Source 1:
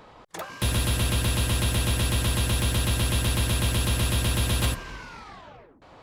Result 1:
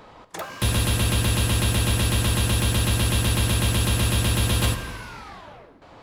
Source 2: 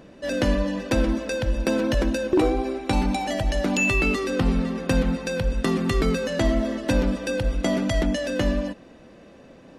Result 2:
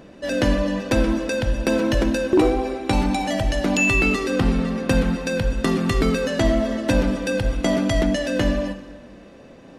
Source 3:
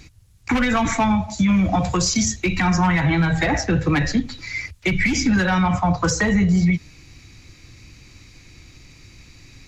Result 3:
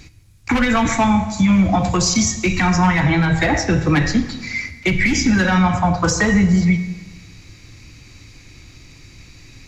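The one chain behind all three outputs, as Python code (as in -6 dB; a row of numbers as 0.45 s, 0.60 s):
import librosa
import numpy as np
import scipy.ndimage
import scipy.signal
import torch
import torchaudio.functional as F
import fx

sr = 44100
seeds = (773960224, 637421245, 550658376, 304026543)

y = fx.rev_plate(x, sr, seeds[0], rt60_s=1.4, hf_ratio=0.9, predelay_ms=0, drr_db=9.5)
y = y * 10.0 ** (2.5 / 20.0)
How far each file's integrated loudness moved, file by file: +3.0 LU, +3.0 LU, +3.0 LU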